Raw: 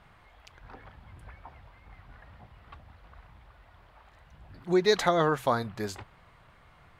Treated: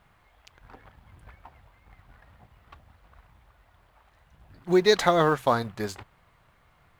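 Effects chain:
mu-law and A-law mismatch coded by A
level +4 dB

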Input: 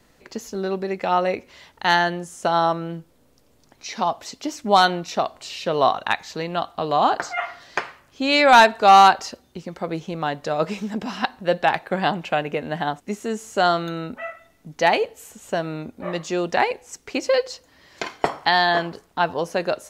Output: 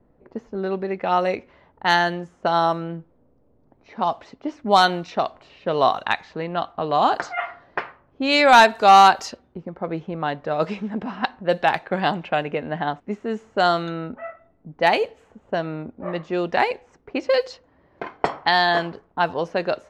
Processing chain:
low-pass that shuts in the quiet parts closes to 680 Hz, open at −15 dBFS

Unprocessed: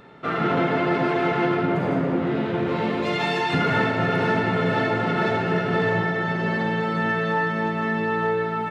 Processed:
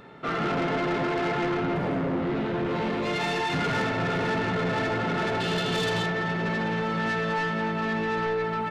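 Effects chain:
0:05.40–0:06.06: flat-topped bell 3,800 Hz +14.5 dB 1 octave
soft clipping −23 dBFS, distortion −11 dB

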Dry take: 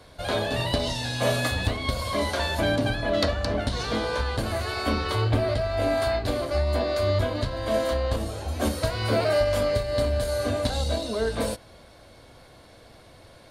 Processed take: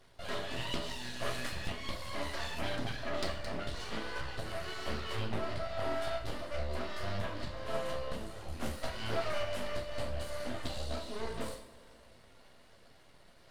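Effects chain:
reverb reduction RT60 0.57 s
reversed playback
upward compression, threshold −44 dBFS
reversed playback
half-wave rectification
hollow resonant body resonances 1,900/2,900 Hz, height 8 dB, ringing for 25 ms
flanger 1.4 Hz, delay 0.2 ms, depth 5.3 ms, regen −49%
coupled-rooms reverb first 0.48 s, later 2.7 s, from −17 dB, DRR 0 dB
highs frequency-modulated by the lows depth 0.27 ms
level −6 dB

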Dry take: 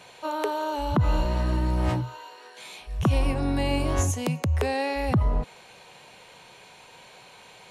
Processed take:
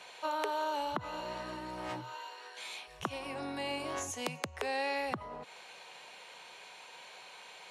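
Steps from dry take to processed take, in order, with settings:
downward compressor, threshold −26 dBFS, peak gain reduction 8.5 dB
meter weighting curve A
level −2 dB

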